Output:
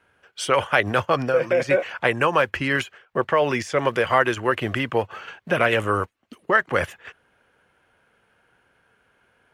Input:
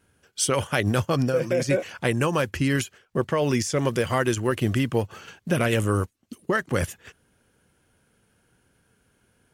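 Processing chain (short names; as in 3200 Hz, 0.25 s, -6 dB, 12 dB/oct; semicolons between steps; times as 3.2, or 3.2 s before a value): three-band isolator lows -14 dB, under 500 Hz, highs -18 dB, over 3100 Hz; gain +8 dB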